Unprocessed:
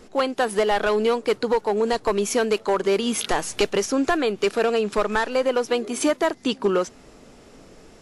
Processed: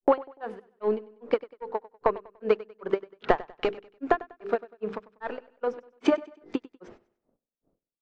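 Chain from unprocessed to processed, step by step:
mains-hum notches 50/100/150/200/250/300/350/400/450/500 Hz
transient designer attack +10 dB, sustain −2 dB
low-pass that shuts in the quiet parts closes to 490 Hz, open at −18.5 dBFS
noise gate −38 dBFS, range −26 dB
parametric band 770 Hz +5 dB 2.8 octaves
downward compressor 8 to 1, threshold −17 dBFS, peak gain reduction 12.5 dB
treble cut that deepens with the level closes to 2,100 Hz, closed at −22 dBFS
granular cloud 205 ms, grains 2.5 per second, pitch spread up and down by 0 semitones
on a send: repeating echo 97 ms, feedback 37%, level −19 dB

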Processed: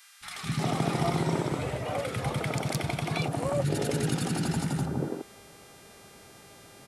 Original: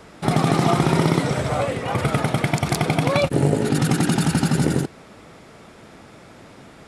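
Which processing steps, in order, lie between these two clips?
hum with harmonics 400 Hz, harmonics 31, −47 dBFS −2 dB per octave
three-band delay without the direct sound highs, lows, mids 210/360 ms, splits 240/1,300 Hz
level −8 dB

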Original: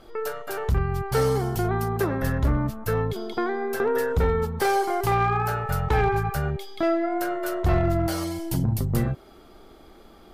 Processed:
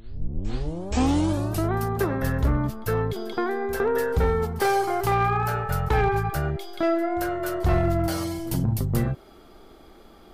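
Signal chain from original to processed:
turntable start at the beginning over 1.76 s
backwards echo 476 ms −18.5 dB

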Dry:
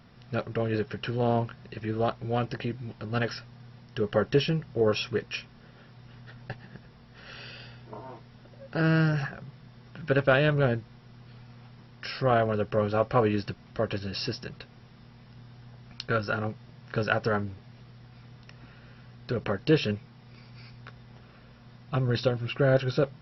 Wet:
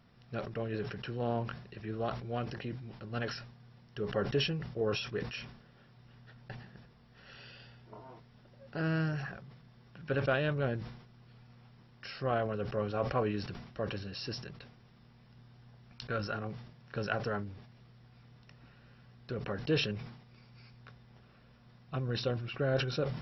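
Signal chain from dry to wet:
level that may fall only so fast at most 72 dB per second
level −8.5 dB

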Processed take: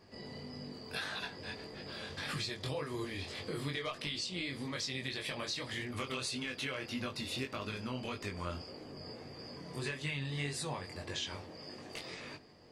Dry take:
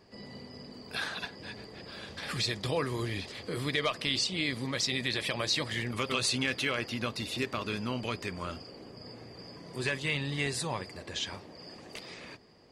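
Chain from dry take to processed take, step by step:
downward compressor, threshold −35 dBFS, peak gain reduction 10 dB
chorus effect 1.7 Hz, delay 19.5 ms, depth 3.6 ms
on a send: convolution reverb RT60 0.35 s, pre-delay 7 ms, DRR 13.5 dB
on the sum: level +2.5 dB

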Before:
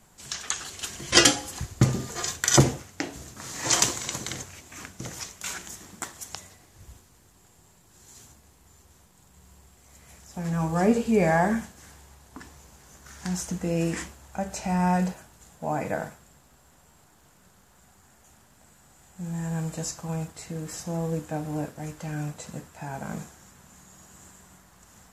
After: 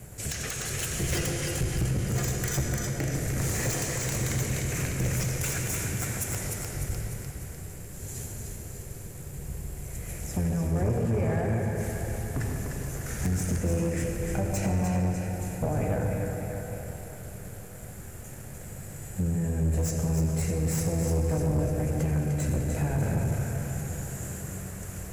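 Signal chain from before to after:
sub-octave generator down 1 octave, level +1 dB
downward compressor 12 to 1, threshold −36 dBFS, peak gain reduction 26.5 dB
octave-band graphic EQ 125/250/500/1,000/8,000 Hz +7/−4/+6/−12/+8 dB
echo with a time of its own for lows and highs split 850 Hz, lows 149 ms, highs 300 ms, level −5.5 dB
on a send at −3 dB: convolution reverb RT60 4.2 s, pre-delay 73 ms
on the sum: hard clipping −29 dBFS, distortion −16 dB
flat-topped bell 5,100 Hz −10 dB
leveller curve on the samples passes 1
level +7 dB

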